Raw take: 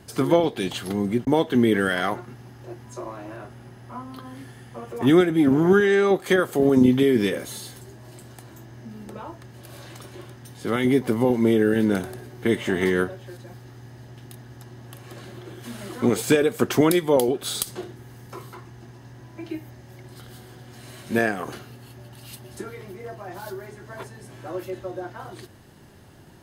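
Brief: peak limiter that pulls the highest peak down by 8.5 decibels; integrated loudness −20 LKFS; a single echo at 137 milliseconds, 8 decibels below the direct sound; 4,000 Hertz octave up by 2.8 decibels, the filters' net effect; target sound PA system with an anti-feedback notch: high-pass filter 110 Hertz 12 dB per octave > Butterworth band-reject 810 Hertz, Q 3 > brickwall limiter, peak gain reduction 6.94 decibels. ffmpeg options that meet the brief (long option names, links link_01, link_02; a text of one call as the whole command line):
ffmpeg -i in.wav -af "equalizer=frequency=4000:width_type=o:gain=3.5,alimiter=limit=-13.5dB:level=0:latency=1,highpass=110,asuperstop=centerf=810:order=8:qfactor=3,aecho=1:1:137:0.398,volume=8.5dB,alimiter=limit=-8.5dB:level=0:latency=1" out.wav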